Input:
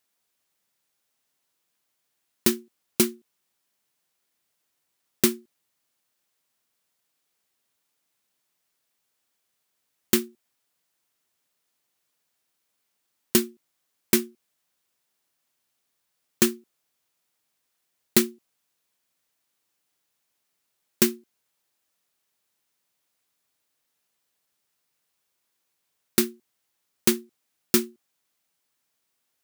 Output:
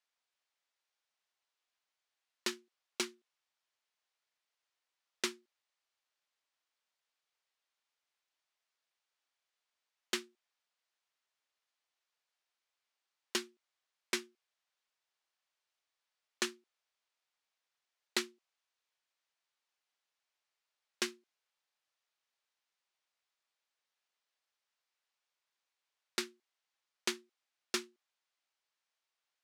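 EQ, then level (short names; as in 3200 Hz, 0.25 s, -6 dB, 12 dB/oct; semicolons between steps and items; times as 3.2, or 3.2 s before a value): BPF 620–5300 Hz; -6.5 dB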